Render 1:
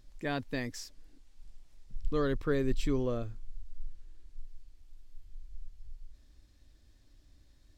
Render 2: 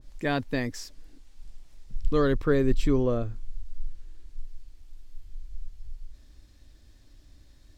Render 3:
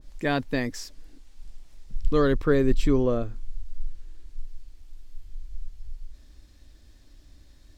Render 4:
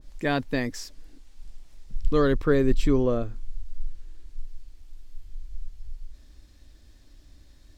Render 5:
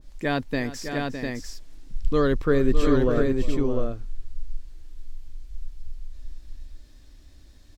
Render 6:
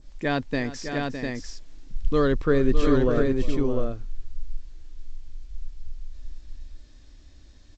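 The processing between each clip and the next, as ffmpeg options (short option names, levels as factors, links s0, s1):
-af "adynamicequalizer=threshold=0.00316:dfrequency=1800:dqfactor=0.7:tfrequency=1800:tqfactor=0.7:attack=5:release=100:ratio=0.375:range=3:mode=cutabove:tftype=highshelf,volume=2.24"
-af "equalizer=f=110:t=o:w=0.33:g=-5,volume=1.26"
-af anull
-af "aecho=1:1:357|609|700:0.158|0.376|0.631"
-ar 16000 -c:a g722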